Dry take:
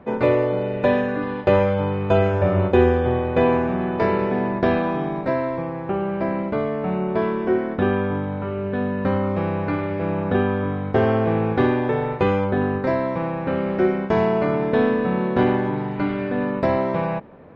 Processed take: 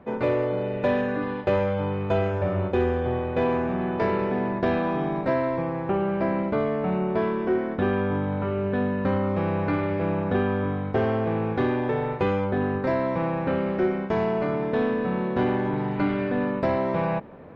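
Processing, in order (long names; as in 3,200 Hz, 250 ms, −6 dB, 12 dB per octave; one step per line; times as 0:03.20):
in parallel at −3 dB: soft clipping −19 dBFS, distortion −10 dB
on the sum: speech leveller within 3 dB 0.5 s
level −7 dB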